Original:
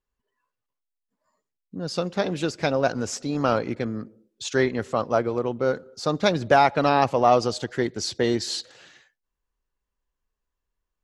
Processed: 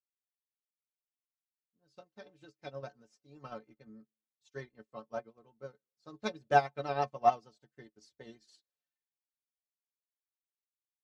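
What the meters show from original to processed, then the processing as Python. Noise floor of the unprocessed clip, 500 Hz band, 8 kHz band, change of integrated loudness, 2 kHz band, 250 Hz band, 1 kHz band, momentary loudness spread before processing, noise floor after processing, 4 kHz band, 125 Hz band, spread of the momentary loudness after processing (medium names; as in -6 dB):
-84 dBFS, -15.5 dB, under -25 dB, -9.5 dB, -13.5 dB, -22.5 dB, -10.0 dB, 11 LU, under -85 dBFS, -20.5 dB, -18.0 dB, 22 LU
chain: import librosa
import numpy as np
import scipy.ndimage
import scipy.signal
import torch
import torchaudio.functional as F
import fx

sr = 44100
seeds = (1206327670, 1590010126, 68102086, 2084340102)

y = fx.vibrato(x, sr, rate_hz=6.6, depth_cents=63.0)
y = fx.stiff_resonator(y, sr, f0_hz=65.0, decay_s=0.27, stiffness=0.03)
y = fx.upward_expand(y, sr, threshold_db=-47.0, expansion=2.5)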